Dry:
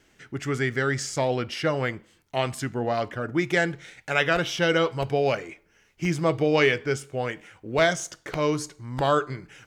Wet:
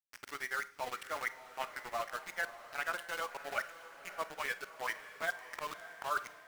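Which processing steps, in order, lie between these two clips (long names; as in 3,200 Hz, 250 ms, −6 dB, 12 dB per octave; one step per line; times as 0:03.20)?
reverb reduction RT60 1.5 s
reversed playback
downward compressor 8 to 1, threshold −36 dBFS, peak gain reduction 19.5 dB
reversed playback
four-pole ladder band-pass 1,300 Hz, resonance 30%
centre clipping without the shift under −55.5 dBFS
time stretch by overlap-add 0.67×, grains 98 ms
on a send: feedback delay with all-pass diffusion 598 ms, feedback 50%, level −13 dB
on the sum: four-comb reverb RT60 0.36 s, combs from 32 ms, DRR 15 dB
level +17.5 dB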